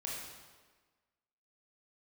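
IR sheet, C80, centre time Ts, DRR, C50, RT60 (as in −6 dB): 2.5 dB, 81 ms, −4.5 dB, 0.0 dB, 1.4 s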